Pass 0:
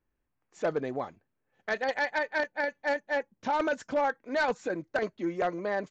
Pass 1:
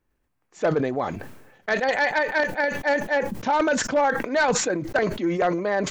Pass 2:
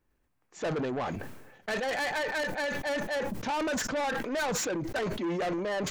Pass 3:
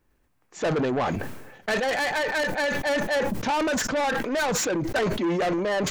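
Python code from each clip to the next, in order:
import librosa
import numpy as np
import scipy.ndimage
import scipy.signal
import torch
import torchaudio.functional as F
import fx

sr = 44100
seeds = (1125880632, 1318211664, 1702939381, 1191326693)

y1 = fx.sustainer(x, sr, db_per_s=56.0)
y1 = y1 * 10.0 ** (6.5 / 20.0)
y2 = 10.0 ** (-27.0 / 20.0) * np.tanh(y1 / 10.0 ** (-27.0 / 20.0))
y2 = y2 * 10.0 ** (-1.0 / 20.0)
y3 = fx.rider(y2, sr, range_db=10, speed_s=0.5)
y3 = y3 * 10.0 ** (6.5 / 20.0)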